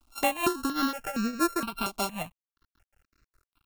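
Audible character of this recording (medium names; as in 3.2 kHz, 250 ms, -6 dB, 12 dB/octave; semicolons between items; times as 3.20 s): a buzz of ramps at a fixed pitch in blocks of 32 samples; tremolo triangle 5.1 Hz, depth 85%; a quantiser's noise floor 12-bit, dither none; notches that jump at a steady rate 4.3 Hz 480–3200 Hz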